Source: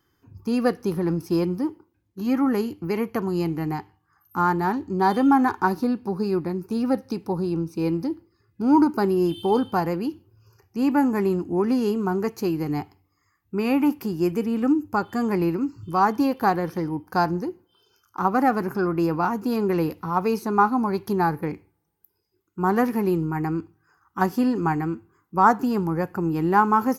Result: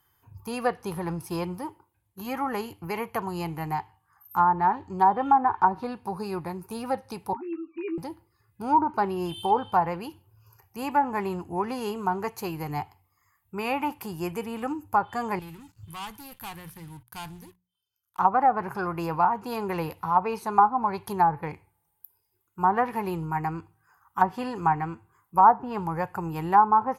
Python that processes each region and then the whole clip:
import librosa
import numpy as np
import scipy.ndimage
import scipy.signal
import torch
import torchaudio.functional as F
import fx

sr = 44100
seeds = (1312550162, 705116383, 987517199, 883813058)

y = fx.chain(x, sr, fx.sine_speech(),
    fx.doubler(ms=15.0, db=-7.0), at=(7.33, 7.98))
y = fx.chain(y, sr, fx.leveller(passes=3),
    fx.tone_stack(knobs='6-0-2'),
    fx.hum_notches(base_hz=60, count=3), at=(15.39, 18.19))
y = fx.curve_eq(y, sr, hz=(130.0, 270.0, 920.0, 1300.0, 2100.0, 3400.0, 5500.0, 9700.0), db=(0, -13, 7, 0, 2, 3, -4, 12))
y = fx.env_lowpass_down(y, sr, base_hz=980.0, full_db=-13.5)
y = F.gain(torch.from_numpy(y), -1.5).numpy()